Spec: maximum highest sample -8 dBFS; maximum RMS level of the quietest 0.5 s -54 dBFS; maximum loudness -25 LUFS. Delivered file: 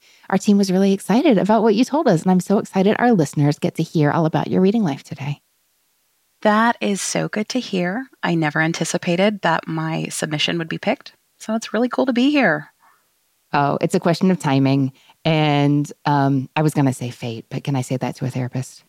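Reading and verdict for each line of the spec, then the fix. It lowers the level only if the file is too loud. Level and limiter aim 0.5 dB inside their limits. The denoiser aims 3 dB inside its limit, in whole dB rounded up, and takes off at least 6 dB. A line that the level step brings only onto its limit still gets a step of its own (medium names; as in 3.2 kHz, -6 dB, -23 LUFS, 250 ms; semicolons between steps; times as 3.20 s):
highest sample -4.5 dBFS: fail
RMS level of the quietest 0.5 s -65 dBFS: pass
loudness -19.0 LUFS: fail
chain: trim -6.5 dB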